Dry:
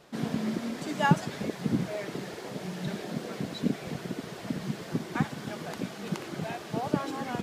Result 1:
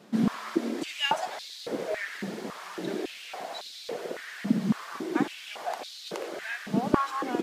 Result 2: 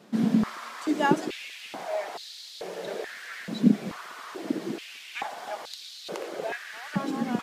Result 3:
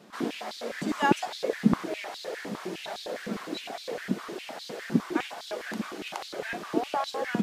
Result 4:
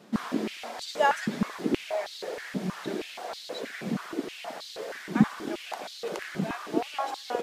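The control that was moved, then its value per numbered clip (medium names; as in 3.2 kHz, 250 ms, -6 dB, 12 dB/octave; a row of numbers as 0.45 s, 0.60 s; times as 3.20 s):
step-sequenced high-pass, rate: 3.6 Hz, 2.3 Hz, 9.8 Hz, 6.3 Hz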